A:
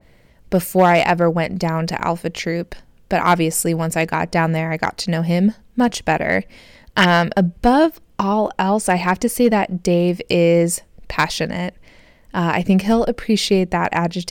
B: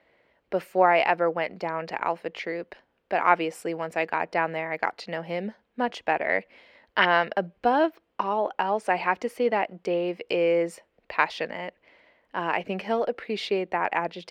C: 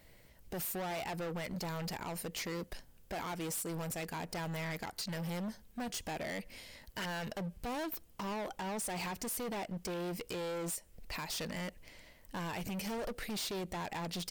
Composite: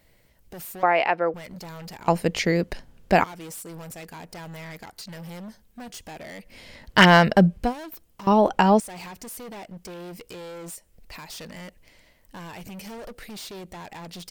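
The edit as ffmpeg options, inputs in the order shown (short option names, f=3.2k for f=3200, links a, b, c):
-filter_complex "[0:a]asplit=3[a][b][c];[2:a]asplit=5[d][e][f][g][h];[d]atrim=end=0.832[i];[1:a]atrim=start=0.828:end=1.342[j];[e]atrim=start=1.338:end=2.082[k];[a]atrim=start=2.078:end=3.242[l];[f]atrim=start=3.238:end=6.69[m];[b]atrim=start=6.45:end=7.74[n];[g]atrim=start=7.5:end=8.272[o];[c]atrim=start=8.268:end=8.802[p];[h]atrim=start=8.798[q];[i][j]acrossfade=d=0.004:c1=hsin:c2=hsin[r];[r][k]acrossfade=d=0.004:c1=hsin:c2=hsin[s];[s][l]acrossfade=d=0.004:c1=hsin:c2=hsin[t];[t][m]acrossfade=d=0.004:c1=hsin:c2=hsin[u];[u][n]acrossfade=d=0.24:c1=tri:c2=tri[v];[v][o]acrossfade=d=0.24:c1=tri:c2=tri[w];[w][p]acrossfade=d=0.004:c1=hsin:c2=hsin[x];[x][q]acrossfade=d=0.004:c1=hsin:c2=hsin"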